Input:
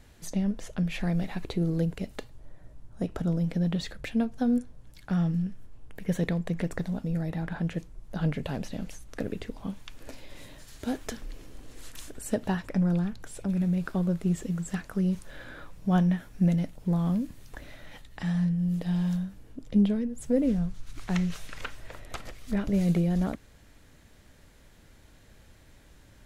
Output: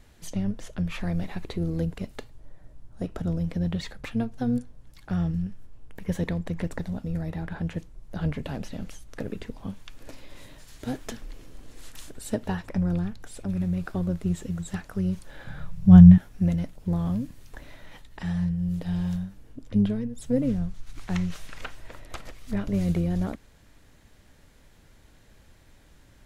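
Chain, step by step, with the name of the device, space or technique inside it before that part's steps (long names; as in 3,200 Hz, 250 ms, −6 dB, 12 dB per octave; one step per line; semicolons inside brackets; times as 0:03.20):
0:15.47–0:16.18: low shelf with overshoot 220 Hz +10.5 dB, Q 3
octave pedal (pitch-shifted copies added −12 semitones −8 dB)
level −1 dB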